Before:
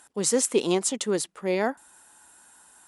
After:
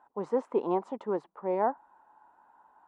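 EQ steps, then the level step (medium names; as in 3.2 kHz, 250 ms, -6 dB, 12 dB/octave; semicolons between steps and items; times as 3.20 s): resonant low-pass 940 Hz, resonance Q 3.5; peaking EQ 91 Hz -8.5 dB 2 oct; -5.5 dB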